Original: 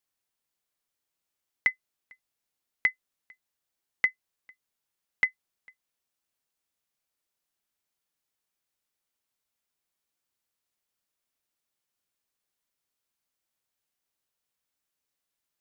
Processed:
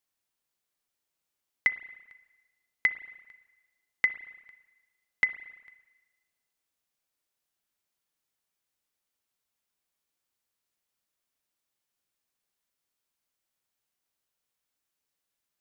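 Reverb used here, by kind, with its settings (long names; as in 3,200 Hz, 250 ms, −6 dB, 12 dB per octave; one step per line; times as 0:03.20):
spring reverb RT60 1.2 s, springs 33/56 ms, chirp 60 ms, DRR 13 dB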